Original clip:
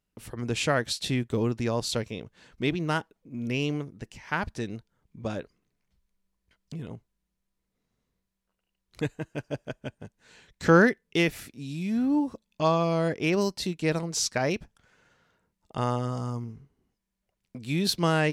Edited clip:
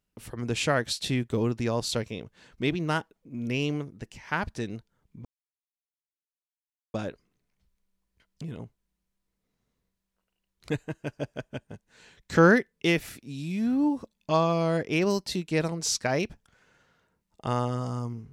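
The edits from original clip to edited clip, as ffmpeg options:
-filter_complex "[0:a]asplit=2[a][b];[a]atrim=end=5.25,asetpts=PTS-STARTPTS,afade=t=out:st=5.246:d=0.004:c=hsin,apad=pad_dur=1.69[c];[b]atrim=start=5.25,asetpts=PTS-STARTPTS,afade=t=in:d=0.004:c=hsin[d];[c][d]concat=n=2:v=0:a=1"

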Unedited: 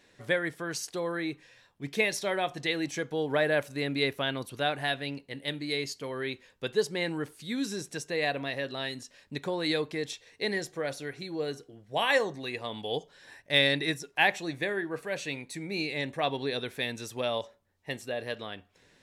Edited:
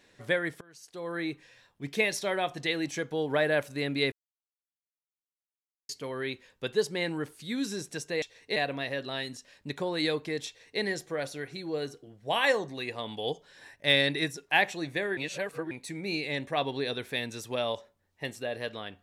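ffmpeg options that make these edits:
-filter_complex "[0:a]asplit=8[a][b][c][d][e][f][g][h];[a]atrim=end=0.61,asetpts=PTS-STARTPTS,afade=t=out:st=0.606:d=0.004:c=hsin:silence=0.0707946[i];[b]atrim=start=0.61:end=4.12,asetpts=PTS-STARTPTS,afade=t=in:d=0.59:c=qua:silence=0.0707946,afade=t=out:st=3.506:d=0.004:c=hsin[j];[c]atrim=start=4.12:end=5.89,asetpts=PTS-STARTPTS,volume=0[k];[d]atrim=start=5.89:end=8.222,asetpts=PTS-STARTPTS,afade=t=in:d=0.004:c=hsin[l];[e]atrim=start=10.128:end=10.472[m];[f]atrim=start=8.218:end=14.832[n];[g]atrim=start=14.828:end=15.372,asetpts=PTS-STARTPTS,areverse[o];[h]atrim=start=15.368[p];[i][j][k][l]concat=n=4:v=0:a=1[q];[q][m]acrossfade=d=0.004:c1=hsin:c2=hsin[r];[r][n]acrossfade=d=0.004:c1=hsin:c2=hsin[s];[s][o]acrossfade=d=0.004:c1=hsin:c2=hsin[t];[t][p]acrossfade=d=0.004:c1=hsin:c2=hsin"

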